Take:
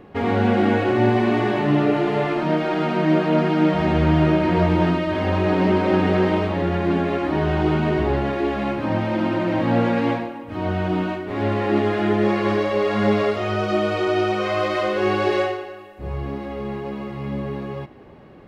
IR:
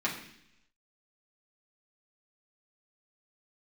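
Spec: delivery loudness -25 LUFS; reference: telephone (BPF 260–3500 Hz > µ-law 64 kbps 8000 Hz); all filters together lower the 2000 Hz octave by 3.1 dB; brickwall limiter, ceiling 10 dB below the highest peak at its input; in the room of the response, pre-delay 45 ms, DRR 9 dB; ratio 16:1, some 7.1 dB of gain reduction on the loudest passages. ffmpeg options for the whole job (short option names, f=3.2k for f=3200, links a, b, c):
-filter_complex "[0:a]equalizer=f=2k:t=o:g=-3.5,acompressor=threshold=-20dB:ratio=16,alimiter=limit=-22dB:level=0:latency=1,asplit=2[a][b];[1:a]atrim=start_sample=2205,adelay=45[c];[b][c]afir=irnorm=-1:irlink=0,volume=-17dB[d];[a][d]amix=inputs=2:normalize=0,highpass=260,lowpass=3.5k,volume=6.5dB" -ar 8000 -c:a pcm_mulaw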